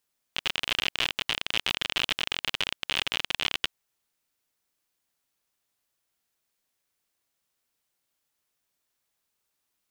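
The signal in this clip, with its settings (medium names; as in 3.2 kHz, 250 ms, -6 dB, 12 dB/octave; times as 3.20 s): random clicks 53 per s -10 dBFS 3.32 s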